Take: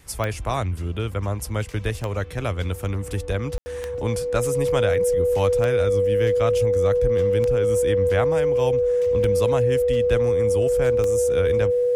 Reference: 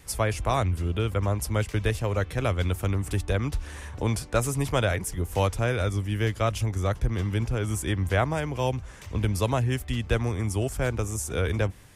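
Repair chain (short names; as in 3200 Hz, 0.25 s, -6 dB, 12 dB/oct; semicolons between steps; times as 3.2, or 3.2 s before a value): de-click; notch 490 Hz, Q 30; room tone fill 3.58–3.66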